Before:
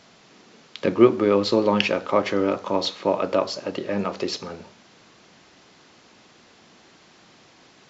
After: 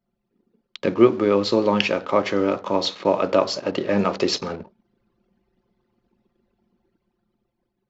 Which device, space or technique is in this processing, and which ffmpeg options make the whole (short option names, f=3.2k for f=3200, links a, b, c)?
voice memo with heavy noise removal: -af "anlmdn=0.251,dynaudnorm=f=360:g=7:m=7.5dB"